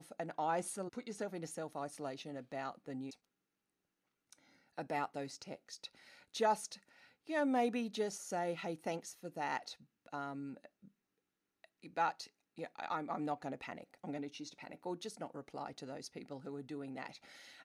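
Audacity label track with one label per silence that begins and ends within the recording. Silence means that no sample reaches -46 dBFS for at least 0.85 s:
3.130000	4.330000	silence
10.660000	11.640000	silence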